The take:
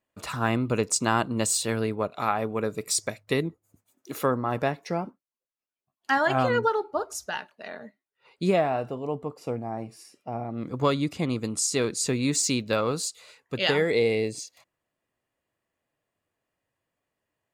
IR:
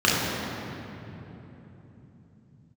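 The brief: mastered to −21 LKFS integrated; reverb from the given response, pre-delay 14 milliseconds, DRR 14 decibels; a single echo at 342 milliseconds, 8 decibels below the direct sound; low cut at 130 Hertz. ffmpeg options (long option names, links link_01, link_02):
-filter_complex "[0:a]highpass=130,aecho=1:1:342:0.398,asplit=2[link_01][link_02];[1:a]atrim=start_sample=2205,adelay=14[link_03];[link_02][link_03]afir=irnorm=-1:irlink=0,volume=-34.5dB[link_04];[link_01][link_04]amix=inputs=2:normalize=0,volume=5.5dB"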